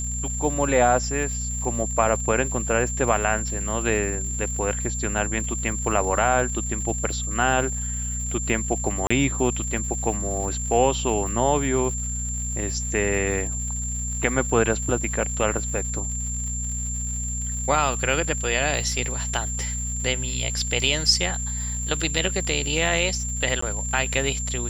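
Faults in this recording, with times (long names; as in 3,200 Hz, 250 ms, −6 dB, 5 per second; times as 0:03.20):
surface crackle 200 per second −34 dBFS
mains hum 60 Hz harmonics 4 −30 dBFS
whistle 7,300 Hz −29 dBFS
0:09.07–0:09.11: drop-out 35 ms
0:23.61–0:23.62: drop-out 14 ms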